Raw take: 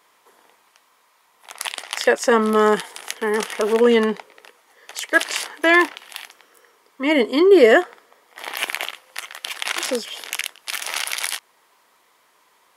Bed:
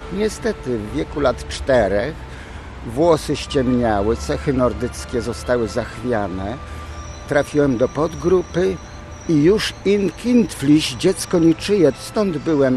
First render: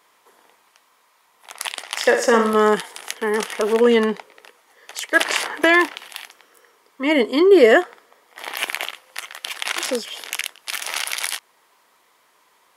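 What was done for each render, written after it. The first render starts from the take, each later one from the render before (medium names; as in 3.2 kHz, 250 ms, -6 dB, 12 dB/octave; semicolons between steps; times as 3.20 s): 1.89–2.54 s: flutter echo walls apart 9.8 m, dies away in 0.5 s; 5.20–6.08 s: three bands compressed up and down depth 70%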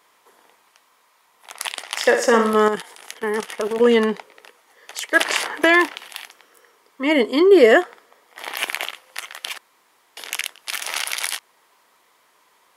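2.68–3.80 s: level held to a coarse grid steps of 11 dB; 9.58–10.17 s: room tone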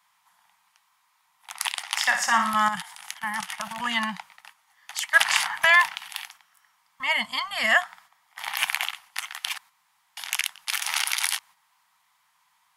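gate -47 dBFS, range -7 dB; elliptic band-stop 180–800 Hz, stop band 80 dB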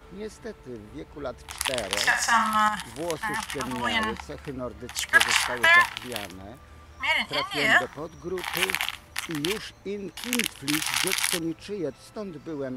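add bed -17 dB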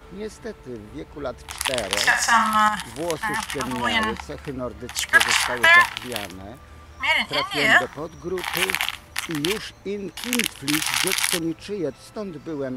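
trim +4 dB; peak limiter -3 dBFS, peak gain reduction 3 dB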